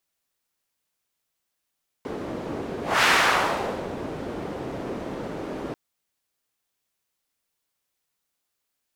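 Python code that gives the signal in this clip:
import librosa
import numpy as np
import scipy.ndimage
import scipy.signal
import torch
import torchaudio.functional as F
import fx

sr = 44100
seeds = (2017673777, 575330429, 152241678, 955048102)

y = fx.whoosh(sr, seeds[0], length_s=3.69, peak_s=0.99, rise_s=0.24, fall_s=0.95, ends_hz=370.0, peak_hz=1800.0, q=1.1, swell_db=14)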